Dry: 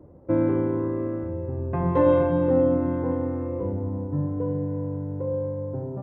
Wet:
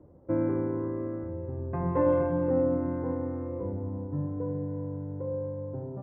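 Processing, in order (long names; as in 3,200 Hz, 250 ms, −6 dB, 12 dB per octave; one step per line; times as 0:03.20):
low-pass filter 2,300 Hz 24 dB per octave
level −5.5 dB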